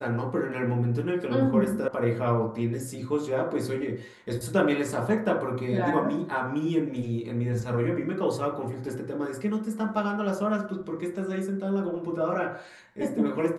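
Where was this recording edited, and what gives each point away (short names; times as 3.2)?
1.88 sound cut off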